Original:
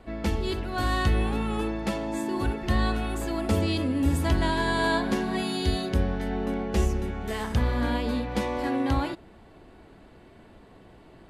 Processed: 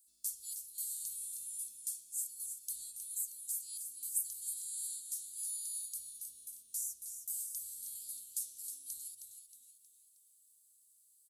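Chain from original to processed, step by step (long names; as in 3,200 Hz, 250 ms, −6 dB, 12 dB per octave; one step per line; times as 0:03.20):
inverse Chebyshev high-pass filter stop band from 2,200 Hz, stop band 70 dB
speech leveller within 3 dB 0.5 s
echo with shifted repeats 315 ms, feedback 43%, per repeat −150 Hz, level −8 dB
level +12 dB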